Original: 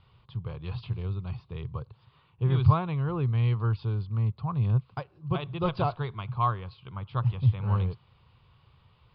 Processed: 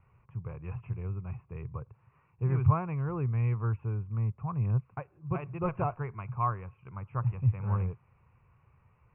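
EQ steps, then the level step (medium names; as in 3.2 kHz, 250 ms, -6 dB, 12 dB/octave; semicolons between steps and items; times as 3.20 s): steep low-pass 2.6 kHz 96 dB/octave; -3.5 dB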